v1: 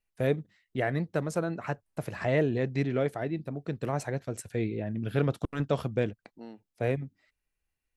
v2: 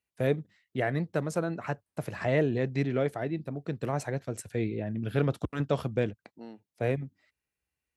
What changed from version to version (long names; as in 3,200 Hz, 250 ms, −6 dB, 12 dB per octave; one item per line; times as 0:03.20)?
master: add high-pass filter 58 Hz 24 dB per octave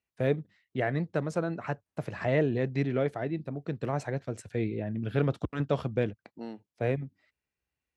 first voice: add high-frequency loss of the air 66 metres
second voice +5.0 dB